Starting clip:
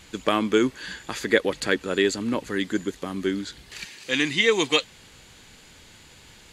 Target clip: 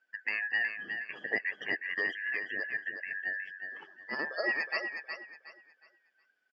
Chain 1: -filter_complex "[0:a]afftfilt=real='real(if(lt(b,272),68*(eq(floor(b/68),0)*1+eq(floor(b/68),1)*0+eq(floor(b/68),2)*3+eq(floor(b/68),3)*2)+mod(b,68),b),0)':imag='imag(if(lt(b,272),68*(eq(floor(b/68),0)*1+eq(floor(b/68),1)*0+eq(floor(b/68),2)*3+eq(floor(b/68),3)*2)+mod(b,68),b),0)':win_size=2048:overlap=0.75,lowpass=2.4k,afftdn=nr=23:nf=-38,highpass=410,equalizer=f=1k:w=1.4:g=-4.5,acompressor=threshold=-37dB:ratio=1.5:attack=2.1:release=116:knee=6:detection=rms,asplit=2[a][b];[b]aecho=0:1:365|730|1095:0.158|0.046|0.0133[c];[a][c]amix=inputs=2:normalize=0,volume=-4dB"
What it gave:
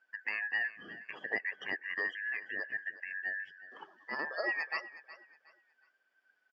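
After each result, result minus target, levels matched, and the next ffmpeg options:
echo-to-direct -9 dB; compressor: peak gain reduction +4.5 dB; 1000 Hz band +2.5 dB
-filter_complex "[0:a]afftfilt=real='real(if(lt(b,272),68*(eq(floor(b/68),0)*1+eq(floor(b/68),1)*0+eq(floor(b/68),2)*3+eq(floor(b/68),3)*2)+mod(b,68),b),0)':imag='imag(if(lt(b,272),68*(eq(floor(b/68),0)*1+eq(floor(b/68),1)*0+eq(floor(b/68),2)*3+eq(floor(b/68),3)*2)+mod(b,68),b),0)':win_size=2048:overlap=0.75,lowpass=2.4k,afftdn=nr=23:nf=-38,highpass=410,equalizer=f=1k:w=1.4:g=-4.5,acompressor=threshold=-37dB:ratio=1.5:attack=2.1:release=116:knee=6:detection=rms,asplit=2[a][b];[b]aecho=0:1:365|730|1095|1460:0.447|0.13|0.0376|0.0109[c];[a][c]amix=inputs=2:normalize=0,volume=-4dB"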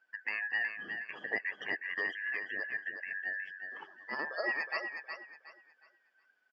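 compressor: peak gain reduction +4.5 dB; 1000 Hz band +3.5 dB
-filter_complex "[0:a]afftfilt=real='real(if(lt(b,272),68*(eq(floor(b/68),0)*1+eq(floor(b/68),1)*0+eq(floor(b/68),2)*3+eq(floor(b/68),3)*2)+mod(b,68),b),0)':imag='imag(if(lt(b,272),68*(eq(floor(b/68),0)*1+eq(floor(b/68),1)*0+eq(floor(b/68),2)*3+eq(floor(b/68),3)*2)+mod(b,68),b),0)':win_size=2048:overlap=0.75,lowpass=2.4k,afftdn=nr=23:nf=-38,highpass=410,equalizer=f=1k:w=1.4:g=-4.5,acompressor=threshold=-25dB:ratio=1.5:attack=2.1:release=116:knee=6:detection=rms,asplit=2[a][b];[b]aecho=0:1:365|730|1095|1460:0.447|0.13|0.0376|0.0109[c];[a][c]amix=inputs=2:normalize=0,volume=-4dB"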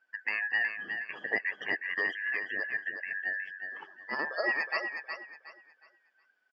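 1000 Hz band +3.0 dB
-filter_complex "[0:a]afftfilt=real='real(if(lt(b,272),68*(eq(floor(b/68),0)*1+eq(floor(b/68),1)*0+eq(floor(b/68),2)*3+eq(floor(b/68),3)*2)+mod(b,68),b),0)':imag='imag(if(lt(b,272),68*(eq(floor(b/68),0)*1+eq(floor(b/68),1)*0+eq(floor(b/68),2)*3+eq(floor(b/68),3)*2)+mod(b,68),b),0)':win_size=2048:overlap=0.75,lowpass=2.4k,afftdn=nr=23:nf=-38,highpass=410,equalizer=f=1k:w=1.4:g=-11.5,acompressor=threshold=-25dB:ratio=1.5:attack=2.1:release=116:knee=6:detection=rms,asplit=2[a][b];[b]aecho=0:1:365|730|1095|1460:0.447|0.13|0.0376|0.0109[c];[a][c]amix=inputs=2:normalize=0,volume=-4dB"

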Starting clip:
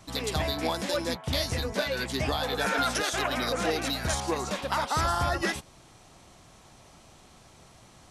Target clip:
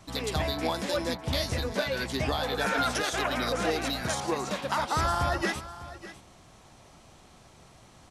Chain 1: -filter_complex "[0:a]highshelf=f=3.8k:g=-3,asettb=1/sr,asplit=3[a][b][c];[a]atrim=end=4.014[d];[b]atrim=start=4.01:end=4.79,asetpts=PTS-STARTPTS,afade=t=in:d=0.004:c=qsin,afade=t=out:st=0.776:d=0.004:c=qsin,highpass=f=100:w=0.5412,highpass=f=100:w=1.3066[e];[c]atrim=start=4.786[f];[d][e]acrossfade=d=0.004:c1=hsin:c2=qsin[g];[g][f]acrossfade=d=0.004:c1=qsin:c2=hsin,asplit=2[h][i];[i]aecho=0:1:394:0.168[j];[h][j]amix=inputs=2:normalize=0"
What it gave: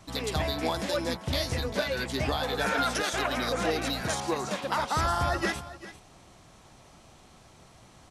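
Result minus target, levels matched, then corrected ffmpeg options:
echo 0.208 s early
-filter_complex "[0:a]highshelf=f=3.8k:g=-3,asettb=1/sr,asplit=3[a][b][c];[a]atrim=end=4.014[d];[b]atrim=start=4.01:end=4.79,asetpts=PTS-STARTPTS,afade=t=in:d=0.004:c=qsin,afade=t=out:st=0.776:d=0.004:c=qsin,highpass=f=100:w=0.5412,highpass=f=100:w=1.3066[e];[c]atrim=start=4.786[f];[d][e]acrossfade=d=0.004:c1=hsin:c2=qsin[g];[g][f]acrossfade=d=0.004:c1=qsin:c2=hsin,asplit=2[h][i];[i]aecho=0:1:602:0.168[j];[h][j]amix=inputs=2:normalize=0"

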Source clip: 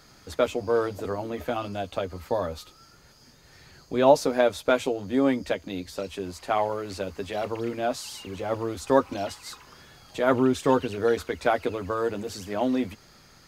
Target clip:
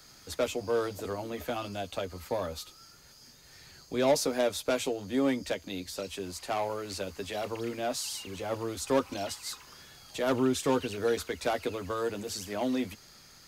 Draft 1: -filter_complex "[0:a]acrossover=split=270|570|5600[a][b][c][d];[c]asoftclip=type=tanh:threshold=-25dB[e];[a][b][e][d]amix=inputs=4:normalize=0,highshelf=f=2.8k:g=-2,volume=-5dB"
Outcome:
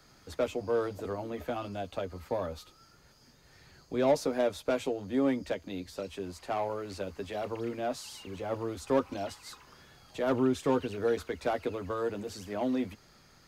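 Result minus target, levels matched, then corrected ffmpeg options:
4000 Hz band -6.5 dB
-filter_complex "[0:a]acrossover=split=270|570|5600[a][b][c][d];[c]asoftclip=type=tanh:threshold=-25dB[e];[a][b][e][d]amix=inputs=4:normalize=0,highshelf=f=2.8k:g=9.5,volume=-5dB"

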